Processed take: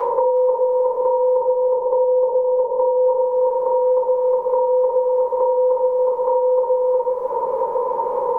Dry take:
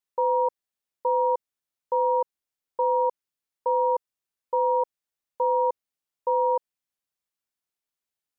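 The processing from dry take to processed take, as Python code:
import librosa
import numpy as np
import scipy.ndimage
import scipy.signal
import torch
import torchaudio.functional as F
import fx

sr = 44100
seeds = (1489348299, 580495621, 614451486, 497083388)

y = fx.bin_compress(x, sr, power=0.2)
y = fx.lowpass(y, sr, hz=1000.0, slope=24, at=(1.35, 3.05), fade=0.02)
y = fx.echo_feedback(y, sr, ms=364, feedback_pct=18, wet_db=-3)
y = fx.room_shoebox(y, sr, seeds[0], volume_m3=83.0, walls='mixed', distance_m=3.3)
y = fx.band_squash(y, sr, depth_pct=100)
y = y * 10.0 ** (-3.0 / 20.0)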